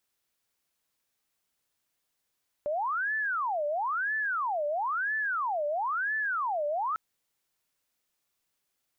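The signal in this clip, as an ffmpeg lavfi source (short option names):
-f lavfi -i "aevalsrc='0.0447*sin(2*PI*(1167.5*t-582.5/(2*PI*1)*sin(2*PI*1*t)))':d=4.3:s=44100"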